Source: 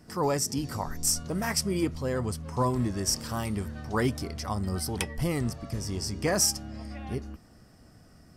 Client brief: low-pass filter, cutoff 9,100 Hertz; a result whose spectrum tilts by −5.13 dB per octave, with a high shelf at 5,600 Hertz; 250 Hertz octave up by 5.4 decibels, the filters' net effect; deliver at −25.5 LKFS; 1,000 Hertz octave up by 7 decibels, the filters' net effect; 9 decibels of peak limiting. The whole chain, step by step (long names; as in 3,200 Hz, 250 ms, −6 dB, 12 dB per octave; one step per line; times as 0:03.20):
low-pass filter 9,100 Hz
parametric band 250 Hz +6.5 dB
parametric band 1,000 Hz +8 dB
high-shelf EQ 5,600 Hz −5.5 dB
level +4 dB
brickwall limiter −14.5 dBFS